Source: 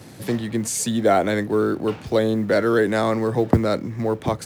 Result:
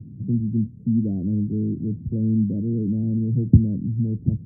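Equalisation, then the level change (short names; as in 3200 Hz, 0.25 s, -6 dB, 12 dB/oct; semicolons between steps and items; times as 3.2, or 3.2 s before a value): inverse Chebyshev low-pass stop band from 1300 Hz, stop band 80 dB; +6.5 dB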